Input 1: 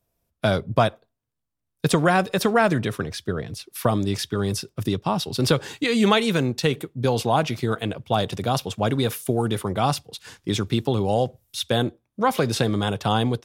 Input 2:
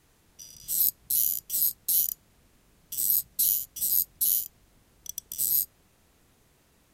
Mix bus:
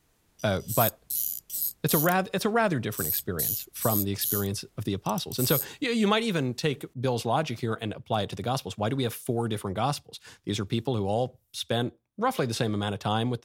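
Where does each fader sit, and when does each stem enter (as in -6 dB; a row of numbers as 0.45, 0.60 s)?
-5.5, -4.5 dB; 0.00, 0.00 s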